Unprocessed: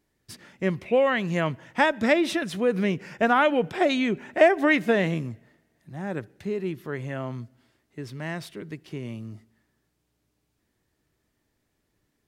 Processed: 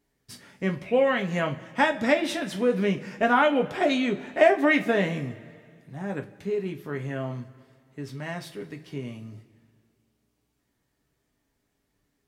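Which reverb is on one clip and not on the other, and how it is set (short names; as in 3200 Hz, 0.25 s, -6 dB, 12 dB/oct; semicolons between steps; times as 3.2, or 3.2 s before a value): two-slope reverb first 0.22 s, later 2.2 s, from -22 dB, DRR 2.5 dB; gain -2.5 dB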